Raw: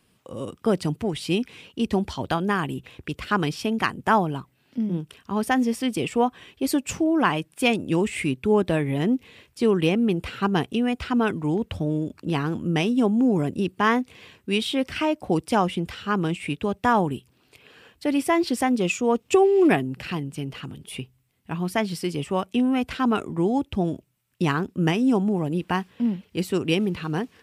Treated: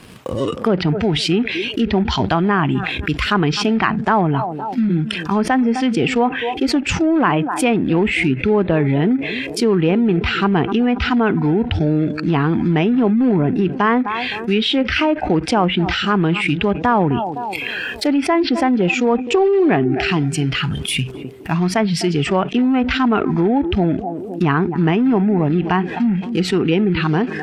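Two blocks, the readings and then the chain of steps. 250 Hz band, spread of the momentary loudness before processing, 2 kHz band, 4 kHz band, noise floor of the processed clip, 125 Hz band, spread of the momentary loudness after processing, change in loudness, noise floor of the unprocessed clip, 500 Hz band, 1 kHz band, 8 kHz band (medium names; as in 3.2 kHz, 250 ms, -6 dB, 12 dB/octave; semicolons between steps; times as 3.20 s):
+7.0 dB, 10 LU, +8.0 dB, +9.0 dB, -28 dBFS, +9.0 dB, 5 LU, +6.5 dB, -65 dBFS, +6.0 dB, +6.5 dB, +5.0 dB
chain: in parallel at -4.5 dB: companded quantiser 4-bit; on the sum: low-pass that closes with the level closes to 2.4 kHz, closed at -15 dBFS; treble shelf 4.8 kHz -7.5 dB; on a send: band-passed feedback delay 257 ms, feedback 50%, band-pass 410 Hz, level -17 dB; on the sum: spectral noise reduction 14 dB; level flattener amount 70%; trim -3 dB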